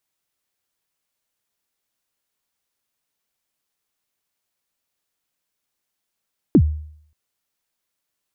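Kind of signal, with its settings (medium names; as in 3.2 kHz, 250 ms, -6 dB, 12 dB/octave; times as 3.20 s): kick drum length 0.58 s, from 370 Hz, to 76 Hz, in 67 ms, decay 0.63 s, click off, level -6 dB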